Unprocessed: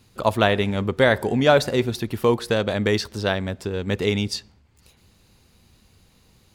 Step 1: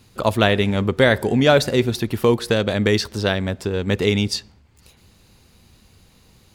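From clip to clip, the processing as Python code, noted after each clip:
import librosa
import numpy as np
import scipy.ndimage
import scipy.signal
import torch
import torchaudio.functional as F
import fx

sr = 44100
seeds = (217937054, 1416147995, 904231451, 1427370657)

y = fx.dynamic_eq(x, sr, hz=900.0, q=0.93, threshold_db=-28.0, ratio=4.0, max_db=-5)
y = F.gain(torch.from_numpy(y), 4.0).numpy()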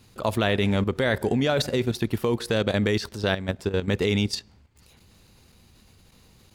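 y = fx.level_steps(x, sr, step_db=11)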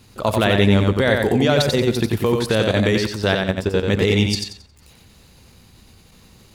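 y = fx.echo_feedback(x, sr, ms=90, feedback_pct=29, wet_db=-4)
y = F.gain(torch.from_numpy(y), 5.0).numpy()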